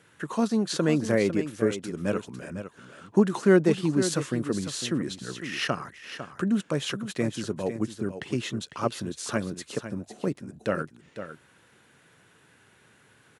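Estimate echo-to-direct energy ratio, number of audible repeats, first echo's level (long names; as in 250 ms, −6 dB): −10.5 dB, 1, −10.5 dB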